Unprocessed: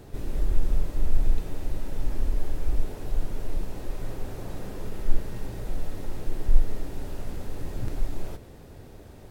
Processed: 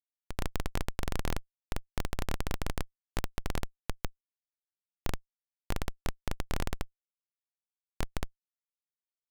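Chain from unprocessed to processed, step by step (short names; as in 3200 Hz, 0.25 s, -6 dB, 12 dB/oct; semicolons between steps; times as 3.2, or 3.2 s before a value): crackle 190/s -28 dBFS; Schmitt trigger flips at -17.5 dBFS; low shelf 480 Hz -8.5 dB; gain +1 dB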